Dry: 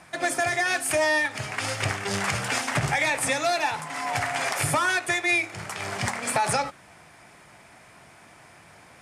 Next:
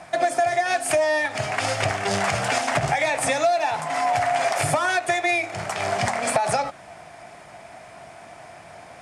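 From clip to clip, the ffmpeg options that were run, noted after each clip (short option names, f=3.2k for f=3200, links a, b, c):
-af "lowpass=10k,equalizer=f=680:t=o:w=0.45:g=11.5,acompressor=threshold=-23dB:ratio=4,volume=4dB"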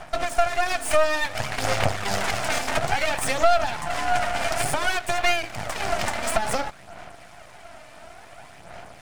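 -af "equalizer=f=370:t=o:w=0.77:g=-3.5,aphaser=in_gain=1:out_gain=1:delay=3.4:decay=0.48:speed=0.57:type=sinusoidal,aeval=exprs='max(val(0),0)':c=same,volume=1.5dB"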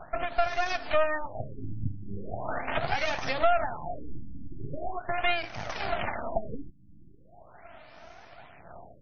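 -af "afftfilt=real='re*lt(b*sr/1024,310*pow(6600/310,0.5+0.5*sin(2*PI*0.4*pts/sr)))':imag='im*lt(b*sr/1024,310*pow(6600/310,0.5+0.5*sin(2*PI*0.4*pts/sr)))':win_size=1024:overlap=0.75,volume=-5dB"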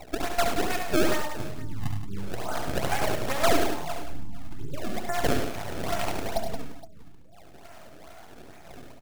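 -filter_complex "[0:a]acrusher=samples=26:mix=1:aa=0.000001:lfo=1:lforange=41.6:lforate=2.3,asplit=2[a][b];[b]aecho=0:1:70|100|175|468:0.473|0.355|0.316|0.119[c];[a][c]amix=inputs=2:normalize=0"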